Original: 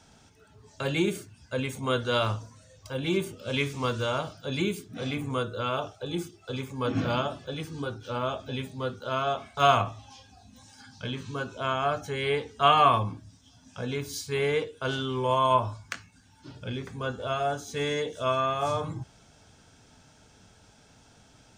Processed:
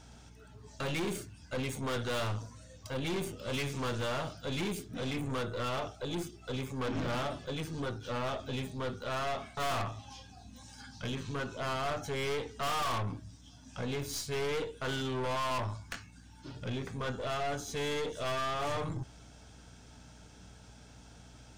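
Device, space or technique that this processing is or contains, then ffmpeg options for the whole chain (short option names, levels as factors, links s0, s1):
valve amplifier with mains hum: -af "aeval=exprs='(tanh(44.7*val(0)+0.4)-tanh(0.4))/44.7':c=same,aeval=exprs='val(0)+0.00141*(sin(2*PI*60*n/s)+sin(2*PI*2*60*n/s)/2+sin(2*PI*3*60*n/s)/3+sin(2*PI*4*60*n/s)/4+sin(2*PI*5*60*n/s)/5)':c=same,volume=1.19"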